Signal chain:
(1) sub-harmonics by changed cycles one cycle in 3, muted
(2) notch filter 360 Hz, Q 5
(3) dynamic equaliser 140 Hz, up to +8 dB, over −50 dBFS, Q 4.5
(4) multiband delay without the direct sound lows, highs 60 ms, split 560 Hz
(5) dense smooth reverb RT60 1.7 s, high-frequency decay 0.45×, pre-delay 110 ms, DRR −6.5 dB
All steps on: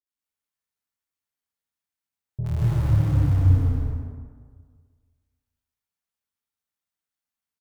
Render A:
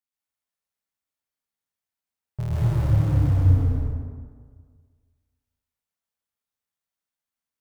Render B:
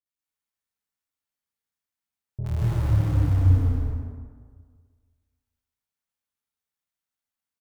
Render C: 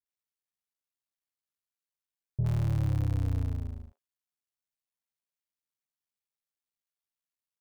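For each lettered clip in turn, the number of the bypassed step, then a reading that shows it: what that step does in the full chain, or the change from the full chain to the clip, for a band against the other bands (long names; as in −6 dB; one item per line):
4, echo-to-direct ratio 19.5 dB to 6.5 dB
3, 250 Hz band −2.0 dB
5, echo-to-direct ratio 19.5 dB to 12.0 dB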